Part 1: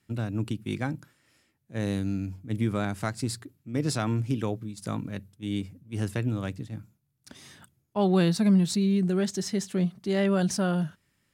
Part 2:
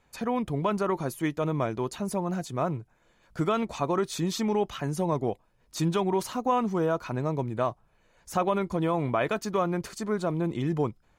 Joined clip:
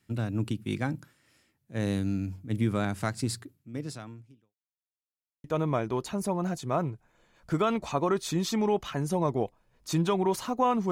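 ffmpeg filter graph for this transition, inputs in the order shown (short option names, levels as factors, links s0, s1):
-filter_complex "[0:a]apad=whole_dur=10.91,atrim=end=10.91,asplit=2[s0][s1];[s0]atrim=end=4.55,asetpts=PTS-STARTPTS,afade=t=out:st=3.36:d=1.19:c=qua[s2];[s1]atrim=start=4.55:end=5.44,asetpts=PTS-STARTPTS,volume=0[s3];[1:a]atrim=start=1.31:end=6.78,asetpts=PTS-STARTPTS,afade=t=in:d=0.004:c=hsin[s4];[s2][s3][s4]concat=n=3:v=0:a=1"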